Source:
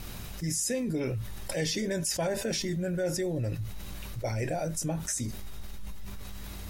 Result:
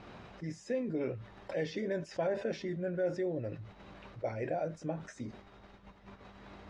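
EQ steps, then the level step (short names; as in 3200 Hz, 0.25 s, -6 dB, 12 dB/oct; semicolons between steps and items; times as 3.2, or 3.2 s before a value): dynamic EQ 890 Hz, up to -4 dB, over -51 dBFS, Q 2.3; band-pass 700 Hz, Q 0.59; air absorption 120 m; 0.0 dB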